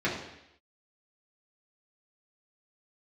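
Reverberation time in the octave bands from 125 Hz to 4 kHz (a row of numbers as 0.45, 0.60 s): 0.75, 0.80, 0.80, 0.80, 0.90, 0.90 s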